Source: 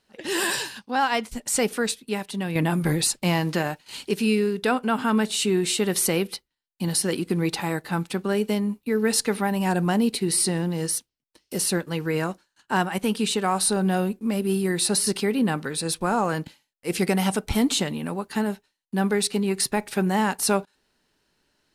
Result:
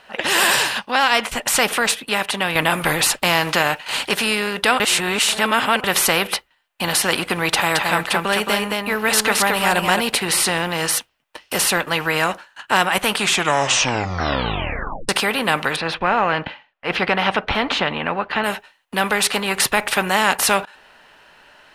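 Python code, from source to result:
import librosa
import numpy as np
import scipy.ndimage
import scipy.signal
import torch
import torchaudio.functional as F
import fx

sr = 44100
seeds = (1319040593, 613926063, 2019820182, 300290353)

y = fx.echo_single(x, sr, ms=220, db=-5.5, at=(7.71, 9.99), fade=0.02)
y = fx.air_absorb(y, sr, metres=290.0, at=(15.76, 18.44))
y = fx.edit(y, sr, fx.reverse_span(start_s=4.8, length_s=1.04),
    fx.tape_stop(start_s=13.09, length_s=2.0), tone=tone)
y = fx.band_shelf(y, sr, hz=1300.0, db=14.0, octaves=2.9)
y = fx.notch(y, sr, hz=2200.0, q=19.0)
y = fx.spectral_comp(y, sr, ratio=2.0)
y = y * librosa.db_to_amplitude(-3.0)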